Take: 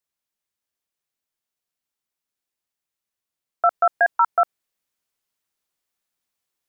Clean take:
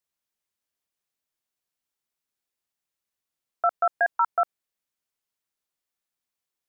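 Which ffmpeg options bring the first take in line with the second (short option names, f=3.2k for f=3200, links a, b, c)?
-af "asetnsamples=n=441:p=0,asendcmd='3.63 volume volume -5dB',volume=0dB"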